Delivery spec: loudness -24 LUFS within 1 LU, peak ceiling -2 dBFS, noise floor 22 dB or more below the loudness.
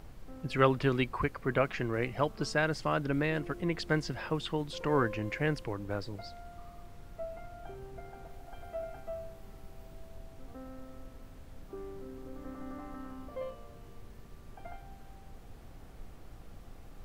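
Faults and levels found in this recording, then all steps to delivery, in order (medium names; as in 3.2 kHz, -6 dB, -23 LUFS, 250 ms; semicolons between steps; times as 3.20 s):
noise floor -52 dBFS; noise floor target -56 dBFS; loudness -33.5 LUFS; peak level -10.5 dBFS; loudness target -24.0 LUFS
-> noise print and reduce 6 dB; trim +9.5 dB; peak limiter -2 dBFS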